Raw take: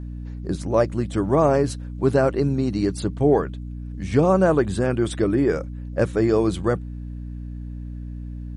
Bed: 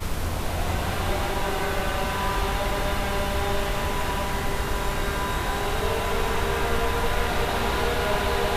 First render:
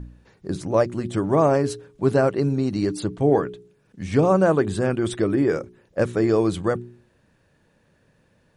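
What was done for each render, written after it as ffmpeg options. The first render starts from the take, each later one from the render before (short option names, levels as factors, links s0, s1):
-af "bandreject=f=60:t=h:w=4,bandreject=f=120:t=h:w=4,bandreject=f=180:t=h:w=4,bandreject=f=240:t=h:w=4,bandreject=f=300:t=h:w=4,bandreject=f=360:t=h:w=4,bandreject=f=420:t=h:w=4"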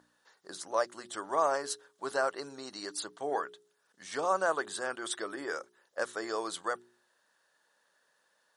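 -af "highpass=1100,equalizer=f=2400:w=2.8:g=-13"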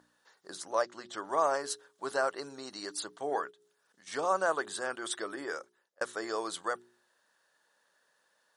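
-filter_complex "[0:a]asettb=1/sr,asplit=3[s0][s1][s2];[s0]atrim=end=0.824[s3];[s1]atrim=start=0.82:end=1.25,asetpts=PTS-STARTPTS,afade=t=in:d=0.004:c=qsin,afade=t=out:st=0.426:d=0.004:c=qsin,lowpass=f=6600:w=0.5412,lowpass=f=6600:w=1.3066[s4];[s2]atrim=start=1.246[s5];[s3][s4]acrossfade=d=0.004:c1=hsin:c2=qsin[s6];[s6][s5]acrossfade=d=0.004:c1=qsin:c2=hsin,asplit=3[s7][s8][s9];[s7]afade=t=out:st=3.5:d=0.02[s10];[s8]acompressor=threshold=0.00112:ratio=5:attack=3.2:release=140:knee=1:detection=peak,afade=t=in:st=3.5:d=0.02,afade=t=out:st=4.06:d=0.02[s11];[s9]afade=t=in:st=4.06:d=0.02[s12];[s10][s11][s12]amix=inputs=3:normalize=0,asplit=2[s13][s14];[s13]atrim=end=6.01,asetpts=PTS-STARTPTS,afade=t=out:st=5.28:d=0.73:c=qsin[s15];[s14]atrim=start=6.01,asetpts=PTS-STARTPTS,afade=t=in:d=0.004:c=hsin[s16];[s15][s16]concat=n=2:v=0:a=1"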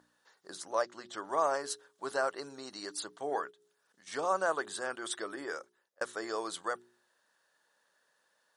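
-af "volume=0.841"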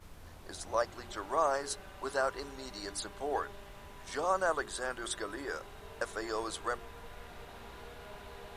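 -filter_complex "[1:a]volume=0.0596[s0];[0:a][s0]amix=inputs=2:normalize=0"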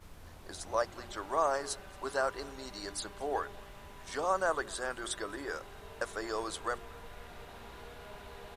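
-af "aecho=1:1:227:0.0631"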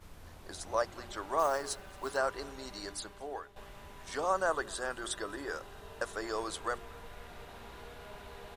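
-filter_complex "[0:a]asplit=3[s0][s1][s2];[s0]afade=t=out:st=1.38:d=0.02[s3];[s1]acrusher=bits=5:mode=log:mix=0:aa=0.000001,afade=t=in:st=1.38:d=0.02,afade=t=out:st=2.16:d=0.02[s4];[s2]afade=t=in:st=2.16:d=0.02[s5];[s3][s4][s5]amix=inputs=3:normalize=0,asettb=1/sr,asplit=3[s6][s7][s8];[s6]atrim=end=4.314[s9];[s7]atrim=start=4.31:end=6.16,asetpts=PTS-STARTPTS,afade=t=in:d=0.004:c=qsin,afade=t=out:st=1.846:d=0.004:c=qsin,bandreject=f=2200:w=12[s10];[s8]atrim=start=6.156[s11];[s9][s10]acrossfade=d=0.004:c1=hsin:c2=qsin[s12];[s12][s11]acrossfade=d=0.004:c1=qsin:c2=hsin,asplit=2[s13][s14];[s13]atrim=end=3.56,asetpts=PTS-STARTPTS,afade=t=out:st=2.77:d=0.79:silence=0.211349[s15];[s14]atrim=start=3.56,asetpts=PTS-STARTPTS,afade=t=in:d=0.004:c=hsin:silence=0.211349[s16];[s15][s16]concat=n=2:v=0:a=1"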